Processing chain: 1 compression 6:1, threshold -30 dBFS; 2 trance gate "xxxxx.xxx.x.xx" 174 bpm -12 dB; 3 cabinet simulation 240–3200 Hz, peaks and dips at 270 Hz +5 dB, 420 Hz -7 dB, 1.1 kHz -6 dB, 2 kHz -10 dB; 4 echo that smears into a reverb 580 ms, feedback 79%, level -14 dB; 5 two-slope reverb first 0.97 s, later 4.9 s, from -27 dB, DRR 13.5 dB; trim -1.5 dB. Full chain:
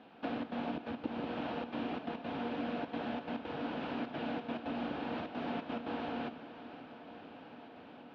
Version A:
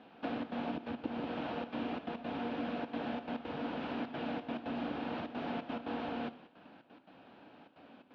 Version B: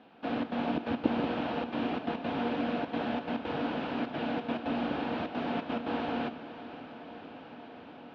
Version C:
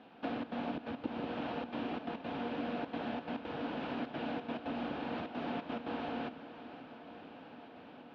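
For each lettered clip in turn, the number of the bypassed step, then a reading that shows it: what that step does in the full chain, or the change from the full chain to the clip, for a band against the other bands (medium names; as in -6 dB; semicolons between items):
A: 4, echo-to-direct -8.0 dB to -13.5 dB; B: 1, mean gain reduction 4.5 dB; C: 5, echo-to-direct -8.0 dB to -10.0 dB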